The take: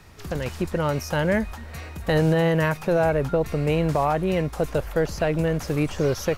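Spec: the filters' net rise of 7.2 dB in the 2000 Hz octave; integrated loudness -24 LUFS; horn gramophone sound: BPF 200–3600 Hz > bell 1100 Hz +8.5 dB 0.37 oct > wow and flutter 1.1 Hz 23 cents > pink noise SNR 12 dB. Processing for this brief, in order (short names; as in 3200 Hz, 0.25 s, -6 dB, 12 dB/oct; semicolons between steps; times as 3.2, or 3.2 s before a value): BPF 200–3600 Hz; bell 1100 Hz +8.5 dB 0.37 oct; bell 2000 Hz +8.5 dB; wow and flutter 1.1 Hz 23 cents; pink noise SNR 12 dB; gain -1.5 dB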